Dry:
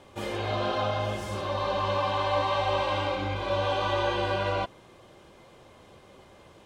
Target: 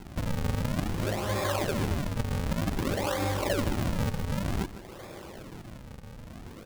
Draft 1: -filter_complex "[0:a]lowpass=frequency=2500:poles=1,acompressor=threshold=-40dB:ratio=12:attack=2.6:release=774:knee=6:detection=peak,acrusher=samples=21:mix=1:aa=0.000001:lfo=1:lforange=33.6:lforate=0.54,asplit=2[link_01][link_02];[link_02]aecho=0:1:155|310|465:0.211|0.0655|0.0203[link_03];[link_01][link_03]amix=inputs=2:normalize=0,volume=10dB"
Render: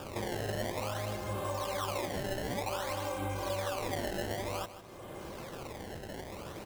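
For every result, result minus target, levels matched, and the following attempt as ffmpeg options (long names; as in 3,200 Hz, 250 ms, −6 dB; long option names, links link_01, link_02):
downward compressor: peak gain reduction +7 dB; sample-and-hold swept by an LFO: distortion −9 dB
-filter_complex "[0:a]lowpass=frequency=2500:poles=1,acompressor=threshold=-32.5dB:ratio=12:attack=2.6:release=774:knee=6:detection=peak,acrusher=samples=21:mix=1:aa=0.000001:lfo=1:lforange=33.6:lforate=0.54,asplit=2[link_01][link_02];[link_02]aecho=0:1:155|310|465:0.211|0.0655|0.0203[link_03];[link_01][link_03]amix=inputs=2:normalize=0,volume=10dB"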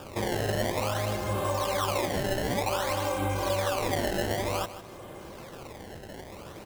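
sample-and-hold swept by an LFO: distortion −9 dB
-filter_complex "[0:a]lowpass=frequency=2500:poles=1,acompressor=threshold=-32.5dB:ratio=12:attack=2.6:release=774:knee=6:detection=peak,acrusher=samples=73:mix=1:aa=0.000001:lfo=1:lforange=117:lforate=0.54,asplit=2[link_01][link_02];[link_02]aecho=0:1:155|310|465:0.211|0.0655|0.0203[link_03];[link_01][link_03]amix=inputs=2:normalize=0,volume=10dB"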